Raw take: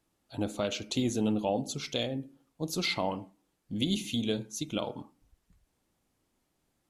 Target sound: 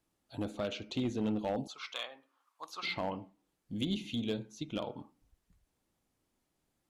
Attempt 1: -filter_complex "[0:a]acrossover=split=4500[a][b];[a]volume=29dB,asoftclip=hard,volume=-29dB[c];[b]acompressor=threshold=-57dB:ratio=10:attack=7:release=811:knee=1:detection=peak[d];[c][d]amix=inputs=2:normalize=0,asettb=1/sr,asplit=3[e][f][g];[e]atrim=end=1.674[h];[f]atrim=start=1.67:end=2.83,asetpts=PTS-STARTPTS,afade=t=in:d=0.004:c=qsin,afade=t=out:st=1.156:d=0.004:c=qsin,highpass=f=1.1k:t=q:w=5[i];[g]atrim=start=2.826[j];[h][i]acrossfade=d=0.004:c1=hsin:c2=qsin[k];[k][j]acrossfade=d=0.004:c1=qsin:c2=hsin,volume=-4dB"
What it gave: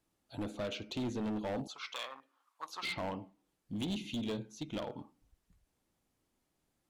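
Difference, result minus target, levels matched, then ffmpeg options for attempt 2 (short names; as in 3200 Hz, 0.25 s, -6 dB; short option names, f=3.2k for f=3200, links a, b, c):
overloaded stage: distortion +11 dB
-filter_complex "[0:a]acrossover=split=4500[a][b];[a]volume=22.5dB,asoftclip=hard,volume=-22.5dB[c];[b]acompressor=threshold=-57dB:ratio=10:attack=7:release=811:knee=1:detection=peak[d];[c][d]amix=inputs=2:normalize=0,asettb=1/sr,asplit=3[e][f][g];[e]atrim=end=1.674[h];[f]atrim=start=1.67:end=2.83,asetpts=PTS-STARTPTS,afade=t=in:d=0.004:c=qsin,afade=t=out:st=1.156:d=0.004:c=qsin,highpass=f=1.1k:t=q:w=5[i];[g]atrim=start=2.826[j];[h][i]acrossfade=d=0.004:c1=hsin:c2=qsin[k];[k][j]acrossfade=d=0.004:c1=qsin:c2=hsin,volume=-4dB"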